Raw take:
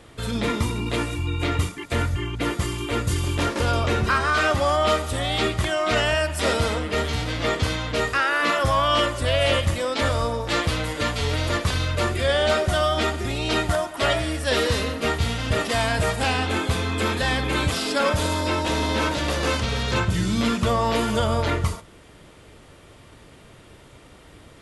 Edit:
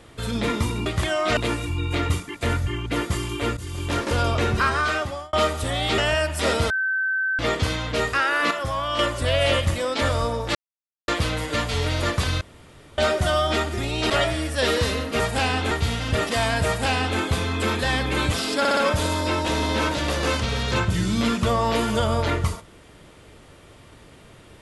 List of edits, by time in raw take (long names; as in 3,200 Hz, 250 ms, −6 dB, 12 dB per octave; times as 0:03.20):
0:03.06–0:03.52: fade in, from −15.5 dB
0:04.23–0:04.82: fade out
0:05.47–0:05.98: move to 0:00.86
0:06.70–0:07.39: beep over 1,540 Hz −20.5 dBFS
0:08.51–0:08.99: clip gain −6 dB
0:10.55: splice in silence 0.53 s
0:11.88–0:12.45: fill with room tone
0:13.57–0:13.99: remove
0:16.05–0:16.56: duplicate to 0:15.09
0:17.97: stutter 0.06 s, 4 plays